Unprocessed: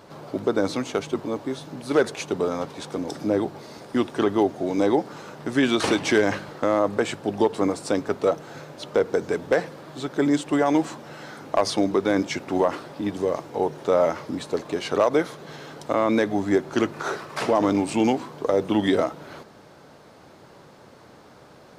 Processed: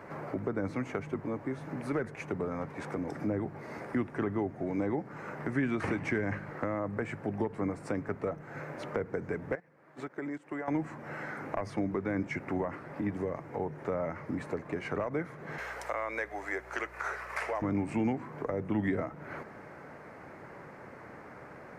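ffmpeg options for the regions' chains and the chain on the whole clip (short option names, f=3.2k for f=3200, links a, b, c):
-filter_complex "[0:a]asettb=1/sr,asplit=3[a][b][c];[a]atrim=end=9.554[d];[b]atrim=start=9.55:end=10.68,asetpts=PTS-STARTPTS,afade=t=in:d=0.004:c=qsin,afade=t=out:st=1.126:d=0.004:c=qsin,acompressor=threshold=-30dB:ratio=5:attack=3.2:release=140:knee=1:detection=peak,agate=range=-16dB:threshold=-35dB:ratio=16:release=100:detection=peak,lowshelf=f=160:g=-8.5[e];[c]atrim=start=10.676[f];[d][e]acrossfade=d=0.004:c1=hsin:c2=qsin[g];[g][f]acrossfade=d=0.004:c1=qsin:c2=hsin,asettb=1/sr,asplit=3[h][i][j];[h]atrim=end=15.584[k];[i]atrim=start=15.58:end=17.62,asetpts=PTS-STARTPTS,afade=t=in:d=0.004:c=qsin,afade=t=out:st=2.036:d=0.004:c=qsin,highpass=f=460:w=0.5412,highpass=f=460:w=1.3066,highshelf=f=2.1k:g=10.5,aeval=exprs='val(0)+0.002*(sin(2*PI*60*n/s)+sin(2*PI*2*60*n/s)/2+sin(2*PI*3*60*n/s)/3+sin(2*PI*4*60*n/s)/4+sin(2*PI*5*60*n/s)/5)':c=same[l];[j]atrim=start=17.616[m];[k][l]acrossfade=d=0.004:c1=hsin:c2=qsin[n];[n][m]acrossfade=d=0.004:c1=qsin:c2=hsin,highshelf=f=2.7k:t=q:w=3:g=-9.5,acrossover=split=180[o][p];[p]acompressor=threshold=-37dB:ratio=3[q];[o][q]amix=inputs=2:normalize=0"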